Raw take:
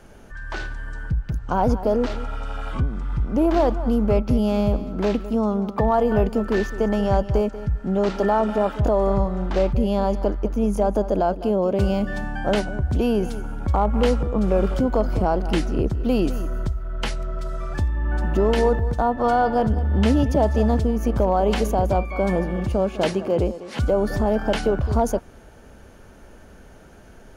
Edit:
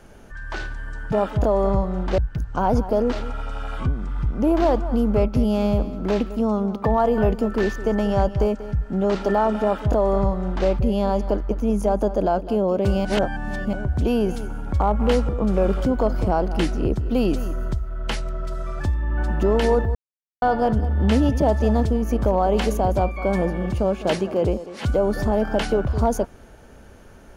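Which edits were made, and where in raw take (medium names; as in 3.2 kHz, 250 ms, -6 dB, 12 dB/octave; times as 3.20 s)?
8.55–9.61 s: copy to 1.12 s
11.99–12.67 s: reverse
18.89–19.36 s: mute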